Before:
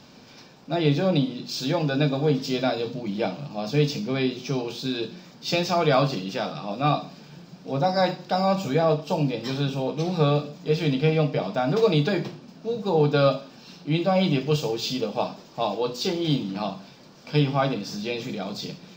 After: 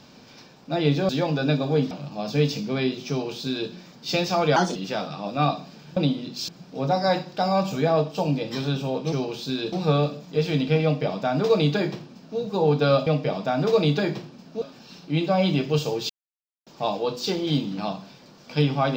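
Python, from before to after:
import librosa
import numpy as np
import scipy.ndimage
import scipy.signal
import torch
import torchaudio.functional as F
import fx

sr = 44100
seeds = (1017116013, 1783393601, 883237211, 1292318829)

y = fx.edit(x, sr, fx.move(start_s=1.09, length_s=0.52, to_s=7.41),
    fx.cut(start_s=2.43, length_s=0.87),
    fx.duplicate(start_s=4.49, length_s=0.6, to_s=10.05),
    fx.speed_span(start_s=5.95, length_s=0.25, speed=1.28),
    fx.duplicate(start_s=11.16, length_s=1.55, to_s=13.39),
    fx.silence(start_s=14.87, length_s=0.57), tone=tone)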